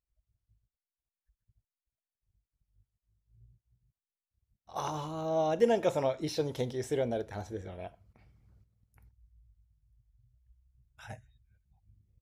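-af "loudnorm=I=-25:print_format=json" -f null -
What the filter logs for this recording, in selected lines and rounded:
"input_i" : "-32.6",
"input_tp" : "-12.9",
"input_lra" : "25.3",
"input_thresh" : "-47.3",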